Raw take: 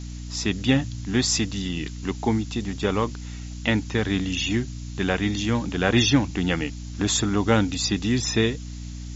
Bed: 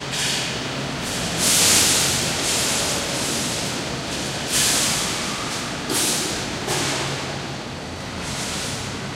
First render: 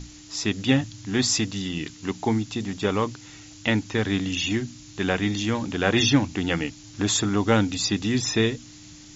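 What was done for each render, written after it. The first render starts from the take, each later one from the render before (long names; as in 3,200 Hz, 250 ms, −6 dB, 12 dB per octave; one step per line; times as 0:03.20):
mains-hum notches 60/120/180/240 Hz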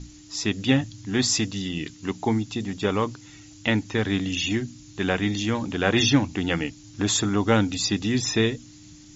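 broadband denoise 6 dB, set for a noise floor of −46 dBFS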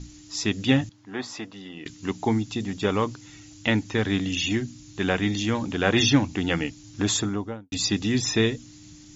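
0:00.89–0:01.86: resonant band-pass 870 Hz, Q 1
0:07.05–0:07.72: fade out and dull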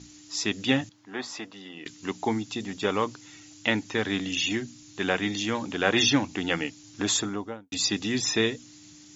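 high-pass filter 330 Hz 6 dB per octave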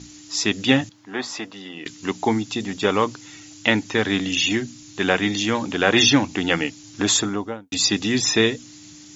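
level +6.5 dB
brickwall limiter −2 dBFS, peak gain reduction 2 dB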